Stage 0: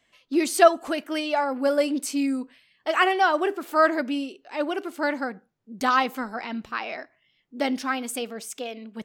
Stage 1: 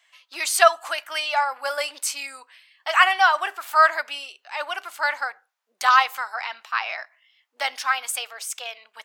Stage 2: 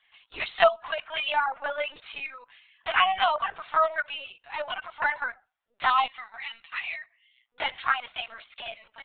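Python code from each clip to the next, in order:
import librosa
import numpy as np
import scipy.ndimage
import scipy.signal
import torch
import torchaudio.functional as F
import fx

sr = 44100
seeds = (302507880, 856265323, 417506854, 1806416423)

y1 = scipy.signal.sosfilt(scipy.signal.butter(4, 840.0, 'highpass', fs=sr, output='sos'), x)
y1 = F.gain(torch.from_numpy(y1), 6.0).numpy()
y2 = fx.env_flanger(y1, sr, rest_ms=8.7, full_db=-14.0)
y2 = fx.spec_box(y2, sr, start_s=6.07, length_s=1.4, low_hz=250.0, high_hz=1800.0, gain_db=-11)
y2 = fx.lpc_vocoder(y2, sr, seeds[0], excitation='pitch_kept', order=16)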